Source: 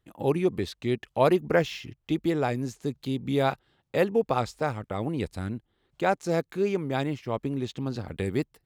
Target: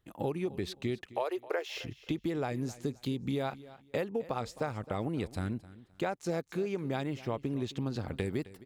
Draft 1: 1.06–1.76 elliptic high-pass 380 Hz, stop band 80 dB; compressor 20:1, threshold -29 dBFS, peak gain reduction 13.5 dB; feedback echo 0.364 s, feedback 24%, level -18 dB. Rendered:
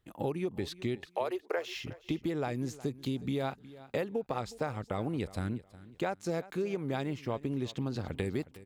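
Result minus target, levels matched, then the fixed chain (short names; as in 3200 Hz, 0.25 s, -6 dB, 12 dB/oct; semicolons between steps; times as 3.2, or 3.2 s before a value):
echo 0.101 s late
1.06–1.76 elliptic high-pass 380 Hz, stop band 80 dB; compressor 20:1, threshold -29 dBFS, peak gain reduction 13.5 dB; feedback echo 0.263 s, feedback 24%, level -18 dB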